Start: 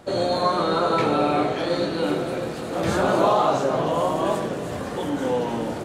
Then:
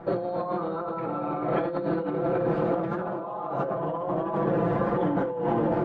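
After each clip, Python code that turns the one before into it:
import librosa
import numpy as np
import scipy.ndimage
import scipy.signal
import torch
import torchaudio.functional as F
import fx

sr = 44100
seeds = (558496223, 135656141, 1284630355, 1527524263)

y = scipy.signal.sosfilt(scipy.signal.cheby1(2, 1.0, 1200.0, 'lowpass', fs=sr, output='sos'), x)
y = y + 0.96 * np.pad(y, (int(5.9 * sr / 1000.0), 0))[:len(y)]
y = fx.over_compress(y, sr, threshold_db=-26.0, ratio=-1.0)
y = F.gain(torch.from_numpy(y), -2.0).numpy()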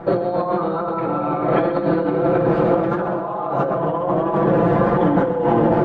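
y = fx.echo_feedback(x, sr, ms=131, feedback_pct=52, wet_db=-11.5)
y = F.gain(torch.from_numpy(y), 8.5).numpy()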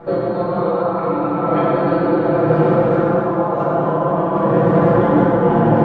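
y = fx.rev_plate(x, sr, seeds[0], rt60_s=4.0, hf_ratio=0.65, predelay_ms=0, drr_db=-7.0)
y = F.gain(torch.from_numpy(y), -5.5).numpy()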